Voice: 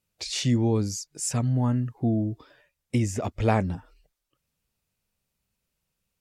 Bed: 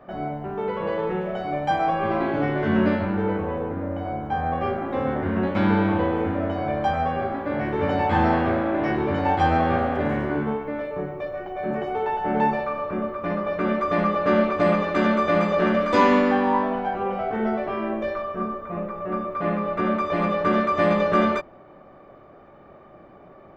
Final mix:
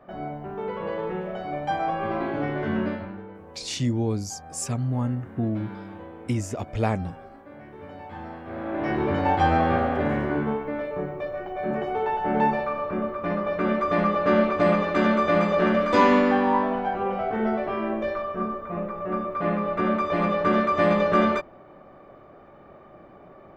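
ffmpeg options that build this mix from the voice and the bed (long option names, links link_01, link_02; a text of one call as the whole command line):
ffmpeg -i stem1.wav -i stem2.wav -filter_complex "[0:a]adelay=3350,volume=-2dB[link_01];[1:a]volume=14dB,afade=type=out:start_time=2.63:duration=0.64:silence=0.188365,afade=type=in:start_time=8.45:duration=0.58:silence=0.125893[link_02];[link_01][link_02]amix=inputs=2:normalize=0" out.wav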